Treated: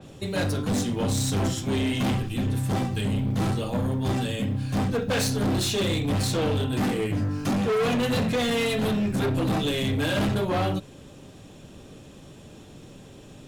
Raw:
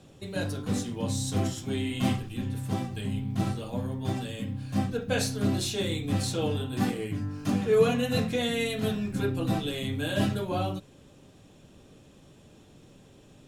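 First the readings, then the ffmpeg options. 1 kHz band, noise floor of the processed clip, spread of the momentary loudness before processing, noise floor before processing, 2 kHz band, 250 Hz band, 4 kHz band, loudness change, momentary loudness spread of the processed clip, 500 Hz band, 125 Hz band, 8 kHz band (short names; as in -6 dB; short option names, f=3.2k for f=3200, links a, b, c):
+5.0 dB, -47 dBFS, 6 LU, -55 dBFS, +4.5 dB, +4.0 dB, +4.5 dB, +4.0 dB, 3 LU, +2.5 dB, +4.5 dB, +4.0 dB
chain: -filter_complex "[0:a]asplit=2[a][b];[b]alimiter=limit=-19dB:level=0:latency=1,volume=-2dB[c];[a][c]amix=inputs=2:normalize=0,asoftclip=type=hard:threshold=-24.5dB,adynamicequalizer=threshold=0.00794:dfrequency=4000:dqfactor=0.7:tfrequency=4000:tqfactor=0.7:attack=5:release=100:ratio=0.375:range=1.5:mode=cutabove:tftype=highshelf,volume=3dB"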